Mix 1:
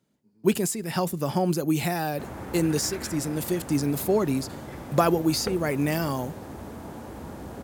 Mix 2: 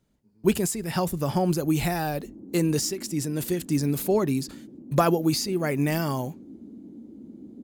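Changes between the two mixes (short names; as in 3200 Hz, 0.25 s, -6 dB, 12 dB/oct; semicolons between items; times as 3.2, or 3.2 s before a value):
background: add Butterworth band-pass 260 Hz, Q 2; master: remove HPF 130 Hz 12 dB/oct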